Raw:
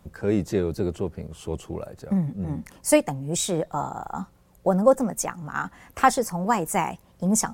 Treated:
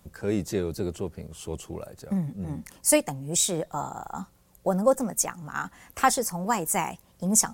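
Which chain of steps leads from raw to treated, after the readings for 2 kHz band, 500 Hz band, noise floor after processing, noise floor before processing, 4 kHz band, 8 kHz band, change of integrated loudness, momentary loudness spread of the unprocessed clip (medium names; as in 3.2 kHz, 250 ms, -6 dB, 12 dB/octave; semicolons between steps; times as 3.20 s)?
-2.0 dB, -4.0 dB, -60 dBFS, -57 dBFS, +1.5 dB, +4.0 dB, -2.0 dB, 13 LU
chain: treble shelf 3.6 kHz +9.5 dB; trim -4 dB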